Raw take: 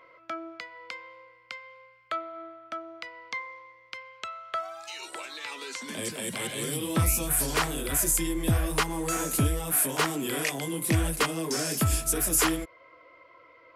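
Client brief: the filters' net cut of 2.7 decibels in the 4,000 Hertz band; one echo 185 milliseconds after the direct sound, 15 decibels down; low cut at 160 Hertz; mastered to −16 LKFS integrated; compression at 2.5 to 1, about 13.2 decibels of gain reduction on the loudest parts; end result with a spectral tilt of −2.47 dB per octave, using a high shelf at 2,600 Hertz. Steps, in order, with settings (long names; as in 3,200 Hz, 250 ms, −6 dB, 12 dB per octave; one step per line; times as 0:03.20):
high-pass filter 160 Hz
high-shelf EQ 2,600 Hz +5.5 dB
parametric band 4,000 Hz −9 dB
downward compressor 2.5 to 1, threshold −38 dBFS
single-tap delay 185 ms −15 dB
level +20.5 dB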